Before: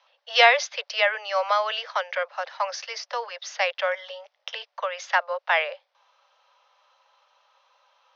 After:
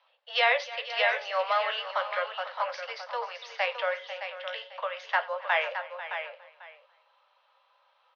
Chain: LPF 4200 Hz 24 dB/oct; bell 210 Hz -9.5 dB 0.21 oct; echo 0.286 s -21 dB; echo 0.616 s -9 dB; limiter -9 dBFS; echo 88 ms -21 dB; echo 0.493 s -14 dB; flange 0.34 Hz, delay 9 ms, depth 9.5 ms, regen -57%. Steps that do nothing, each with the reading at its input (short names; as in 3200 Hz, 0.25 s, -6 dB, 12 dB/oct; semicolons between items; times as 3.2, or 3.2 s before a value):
bell 210 Hz: input band starts at 430 Hz